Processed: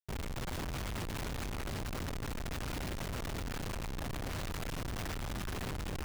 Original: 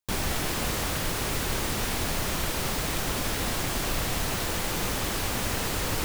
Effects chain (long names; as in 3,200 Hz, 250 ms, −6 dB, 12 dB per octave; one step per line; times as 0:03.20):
brickwall limiter −23.5 dBFS, peak gain reduction 8.5 dB
guitar amp tone stack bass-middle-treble 6-0-2
echo with a time of its own for lows and highs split 350 Hz, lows 246 ms, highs 146 ms, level −11.5 dB
comparator with hysteresis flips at −47 dBFS
level +10 dB